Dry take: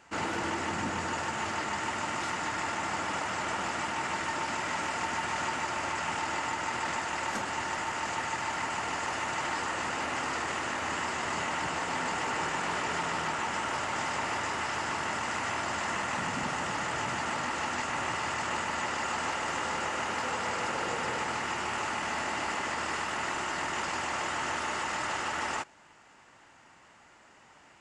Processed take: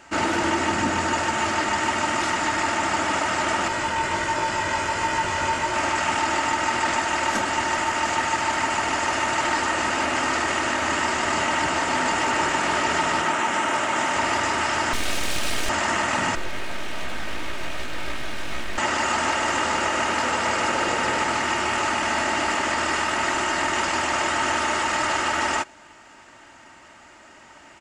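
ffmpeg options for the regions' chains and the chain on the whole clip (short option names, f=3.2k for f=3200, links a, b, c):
-filter_complex "[0:a]asettb=1/sr,asplit=3[a][b][c];[a]atrim=end=3.684[d];[b]atrim=start=3.68:end=5.74,asetpts=PTS-STARTPTS,afade=t=in:d=0.004:c=qsin,afade=t=out:st=2.056:d=0.004:c=qsin,lowshelf=f=220:g=7.5,aecho=1:1:2:0.44,atrim=end_sample=90846,flanger=delay=18.5:depth=2.7:speed=1.4[e];[c]atrim=start=5.736[f];[d][e]acrossfade=d=0.004:c1=hsin:c2=qsin[g];[g][f]acrossfade=d=0.004:c1=qsin:c2=hsin,asettb=1/sr,asplit=3[h][i][j];[h]atrim=end=13.214[k];[i]atrim=start=13.21:end=14.16,asetpts=PTS-STARTPTS,afade=t=in:d=0.004:c=qsin,afade=t=out:st=0.946:d=0.004:c=qsin,highpass=130,equalizer=f=4.7k:t=o:w=0.46:g=-5.5[l];[j]atrim=start=14.156[m];[k][l]acrossfade=d=0.004:c1=hsin:c2=qsin[n];[n][m]acrossfade=d=0.004:c1=qsin:c2=hsin,asettb=1/sr,asplit=3[o][p][q];[o]atrim=end=14.934[r];[p]atrim=start=14.93:end=15.69,asetpts=PTS-STARTPTS,afade=t=in:d=0.004:c=qsin,afade=t=out:st=0.756:d=0.004:c=qsin,highshelf=f=6.8k:g=5.5,aeval=exprs='abs(val(0))':c=same[s];[q]atrim=start=15.686[t];[r][s]acrossfade=d=0.004:c1=hsin:c2=qsin[u];[u][t]acrossfade=d=0.004:c1=qsin:c2=hsin,asettb=1/sr,asplit=3[v][w][x];[v]atrim=end=16.354[y];[w]atrim=start=16.35:end=18.78,asetpts=PTS-STARTPTS,afade=t=in:d=0.004:c=qsin,afade=t=out:st=2.426:d=0.004:c=qsin,highshelf=f=2.3k:g=-10.5,aeval=exprs='abs(val(0))':c=same,flanger=delay=15.5:depth=8:speed=2.7[z];[x]atrim=start=18.776[aa];[y][z]acrossfade=d=0.004:c1=hsin:c2=qsin[ab];[ab][aa]acrossfade=d=0.004:c1=qsin:c2=hsin,bandreject=f=1k:w=16,aecho=1:1:3.2:0.4,volume=9dB"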